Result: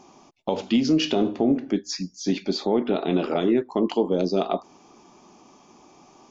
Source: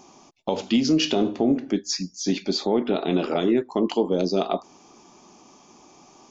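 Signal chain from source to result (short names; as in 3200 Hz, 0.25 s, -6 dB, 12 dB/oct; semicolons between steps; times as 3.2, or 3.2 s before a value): high shelf 5900 Hz -9.5 dB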